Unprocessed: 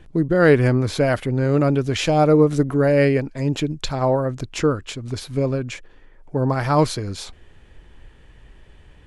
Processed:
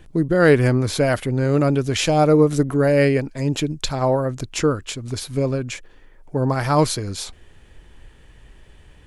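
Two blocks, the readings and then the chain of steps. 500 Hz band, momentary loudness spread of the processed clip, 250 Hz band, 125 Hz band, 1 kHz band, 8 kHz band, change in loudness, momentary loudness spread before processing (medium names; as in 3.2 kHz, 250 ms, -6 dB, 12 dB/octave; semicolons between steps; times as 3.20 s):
0.0 dB, 13 LU, 0.0 dB, 0.0 dB, 0.0 dB, +5.5 dB, 0.0 dB, 14 LU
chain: treble shelf 6.6 kHz +10 dB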